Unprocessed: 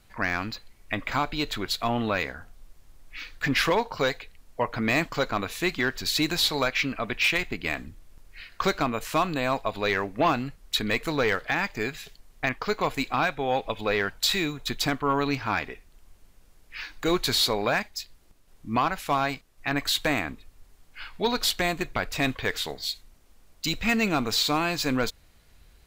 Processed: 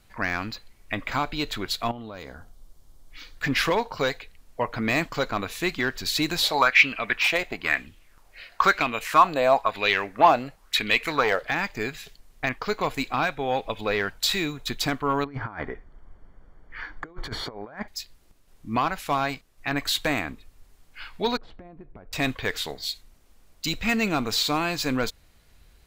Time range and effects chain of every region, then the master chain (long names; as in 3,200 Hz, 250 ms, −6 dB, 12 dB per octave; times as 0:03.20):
0:01.91–0:03.37: parametric band 1,900 Hz −8 dB 1 octave + notch filter 2,600 Hz, Q 8.5 + downward compressor 16 to 1, threshold −33 dBFS
0:06.42–0:11.43: low-shelf EQ 290 Hz −7 dB + auto-filter bell 1 Hz 560–3,000 Hz +13 dB
0:15.24–0:17.88: Savitzky-Golay smoothing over 41 samples + compressor whose output falls as the input rises −33 dBFS, ratio −0.5
0:21.37–0:22.13: Bessel low-pass filter 610 Hz + downward compressor 12 to 1, threshold −40 dBFS
whole clip: no processing